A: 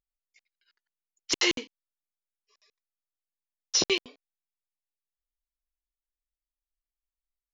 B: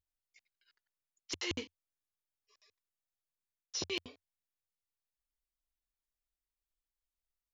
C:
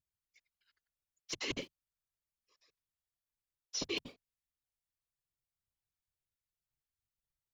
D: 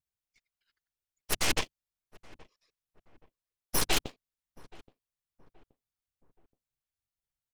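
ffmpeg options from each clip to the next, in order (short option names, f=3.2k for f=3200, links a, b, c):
-af "equalizer=f=87:w=2.4:g=14.5,areverse,acompressor=threshold=-32dB:ratio=10,areverse,volume=-2.5dB"
-filter_complex "[0:a]asplit=2[a][b];[b]aeval=exprs='val(0)*gte(abs(val(0)),0.00266)':c=same,volume=-7.5dB[c];[a][c]amix=inputs=2:normalize=0,afftfilt=real='hypot(re,im)*cos(2*PI*random(0))':imag='hypot(re,im)*sin(2*PI*random(1))':win_size=512:overlap=0.75,volume=2.5dB"
-filter_complex "[0:a]aeval=exprs='0.0708*(cos(1*acos(clip(val(0)/0.0708,-1,1)))-cos(1*PI/2))+0.00794*(cos(3*acos(clip(val(0)/0.0708,-1,1)))-cos(3*PI/2))+0.00251*(cos(7*acos(clip(val(0)/0.0708,-1,1)))-cos(7*PI/2))+0.0316*(cos(8*acos(clip(val(0)/0.0708,-1,1)))-cos(8*PI/2))':c=same,asplit=2[a][b];[b]adelay=825,lowpass=f=1.2k:p=1,volume=-21dB,asplit=2[c][d];[d]adelay=825,lowpass=f=1.2k:p=1,volume=0.41,asplit=2[e][f];[f]adelay=825,lowpass=f=1.2k:p=1,volume=0.41[g];[a][c][e][g]amix=inputs=4:normalize=0,volume=5.5dB"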